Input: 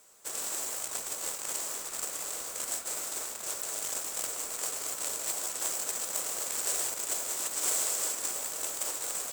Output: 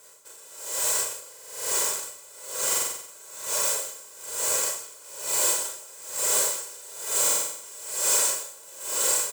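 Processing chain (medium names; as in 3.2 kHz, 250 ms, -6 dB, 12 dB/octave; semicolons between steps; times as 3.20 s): high-pass 61 Hz; comb 2 ms, depth 65%; delay 157 ms -5.5 dB; Schroeder reverb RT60 0.6 s, combs from 28 ms, DRR -5 dB; saturation -16.5 dBFS, distortion -19 dB; buffer glitch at 1.30/2.68/7.22 s, samples 2048, times 8; logarithmic tremolo 1.1 Hz, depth 24 dB; trim +4.5 dB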